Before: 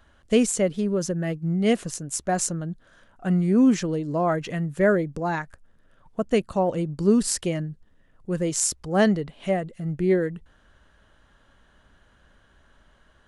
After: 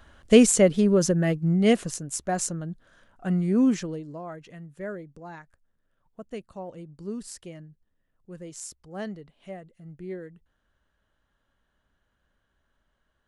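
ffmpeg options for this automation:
ffmpeg -i in.wav -af "volume=4.5dB,afade=type=out:start_time=1.07:duration=1.13:silence=0.421697,afade=type=out:start_time=3.64:duration=0.58:silence=0.237137" out.wav

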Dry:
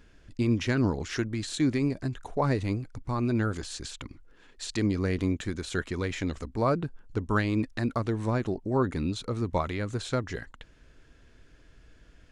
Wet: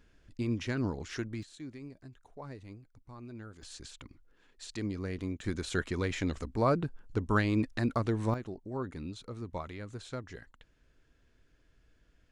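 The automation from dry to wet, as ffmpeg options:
ffmpeg -i in.wav -af "asetnsamples=nb_out_samples=441:pad=0,asendcmd='1.43 volume volume -19dB;3.62 volume volume -9dB;5.44 volume volume -1.5dB;8.34 volume volume -11dB',volume=-7dB" out.wav

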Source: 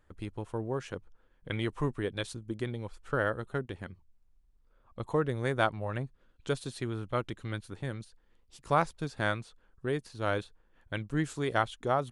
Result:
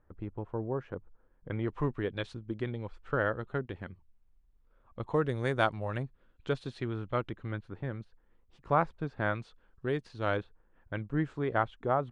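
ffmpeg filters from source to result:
ffmpeg -i in.wav -af "asetnsamples=nb_out_samples=441:pad=0,asendcmd='1.68 lowpass f 3100;5.14 lowpass f 7500;6.03 lowpass f 3300;7.29 lowpass f 1900;9.35 lowpass f 4100;10.37 lowpass f 1800',lowpass=1300" out.wav

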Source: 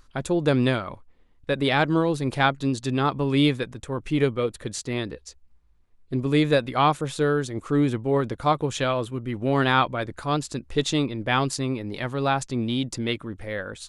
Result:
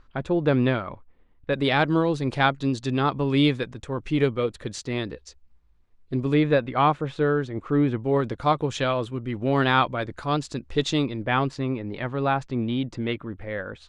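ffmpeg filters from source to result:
ffmpeg -i in.wav -af "asetnsamples=nb_out_samples=441:pad=0,asendcmd='1.53 lowpass f 6000;6.34 lowpass f 2600;8 lowpass f 6000;11.22 lowpass f 2600',lowpass=2800" out.wav

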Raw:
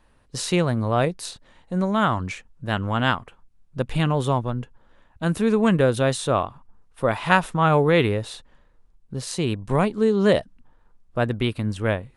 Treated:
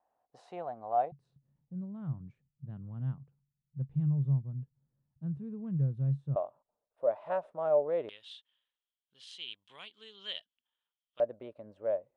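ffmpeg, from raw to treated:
ffmpeg -i in.wav -af "asetnsamples=nb_out_samples=441:pad=0,asendcmd='1.12 bandpass f 140;6.36 bandpass f 600;8.09 bandpass f 3200;11.2 bandpass f 590',bandpass=frequency=730:width_type=q:width=10:csg=0" out.wav

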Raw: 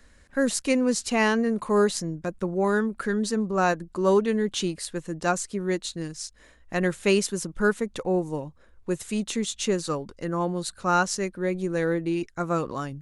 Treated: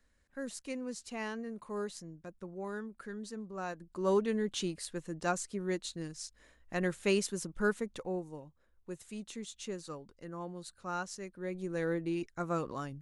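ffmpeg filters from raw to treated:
ffmpeg -i in.wav -af "volume=-0.5dB,afade=type=in:start_time=3.72:duration=0.43:silence=0.354813,afade=type=out:start_time=7.76:duration=0.56:silence=0.421697,afade=type=in:start_time=11.24:duration=0.68:silence=0.421697" out.wav

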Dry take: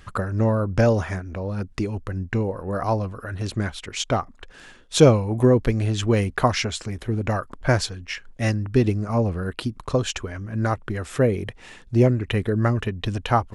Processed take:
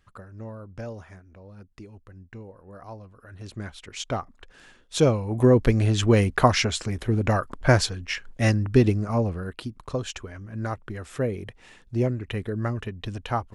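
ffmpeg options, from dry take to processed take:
ffmpeg -i in.wav -af "volume=1.5dB,afade=type=in:start_time=3.09:duration=1.01:silence=0.251189,afade=type=in:start_time=5.17:duration=0.5:silence=0.421697,afade=type=out:start_time=8.7:duration=0.87:silence=0.375837" out.wav

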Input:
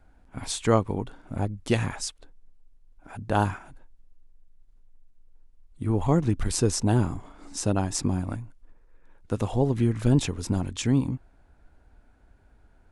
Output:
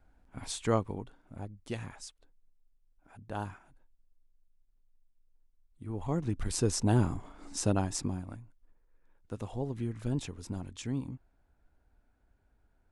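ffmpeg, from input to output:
ffmpeg -i in.wav -af "volume=4dB,afade=type=out:start_time=0.78:duration=0.4:silence=0.446684,afade=type=in:start_time=5.88:duration=1.17:silence=0.281838,afade=type=out:start_time=7.68:duration=0.57:silence=0.354813" out.wav

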